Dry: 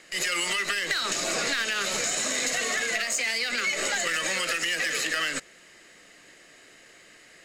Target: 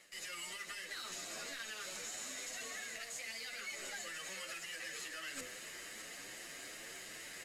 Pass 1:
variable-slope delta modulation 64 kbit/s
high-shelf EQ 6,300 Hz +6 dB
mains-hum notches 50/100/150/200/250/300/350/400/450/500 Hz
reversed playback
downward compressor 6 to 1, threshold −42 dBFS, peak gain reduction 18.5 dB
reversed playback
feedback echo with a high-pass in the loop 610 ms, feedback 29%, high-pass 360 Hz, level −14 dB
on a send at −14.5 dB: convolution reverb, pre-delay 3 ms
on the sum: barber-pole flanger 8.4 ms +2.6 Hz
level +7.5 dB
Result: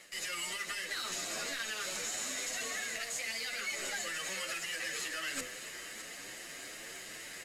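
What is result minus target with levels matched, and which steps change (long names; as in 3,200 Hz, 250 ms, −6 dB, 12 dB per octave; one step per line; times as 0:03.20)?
downward compressor: peak gain reduction −7 dB
change: downward compressor 6 to 1, threshold −50.5 dBFS, peak gain reduction 26 dB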